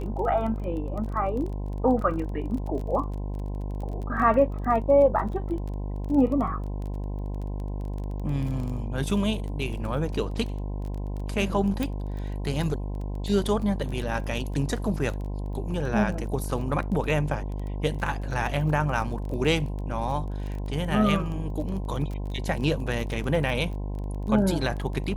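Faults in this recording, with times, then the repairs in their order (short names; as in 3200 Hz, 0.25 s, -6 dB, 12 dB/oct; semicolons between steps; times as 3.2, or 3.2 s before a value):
buzz 50 Hz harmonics 21 -31 dBFS
crackle 21/s -33 dBFS
11.83 pop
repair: de-click; de-hum 50 Hz, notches 21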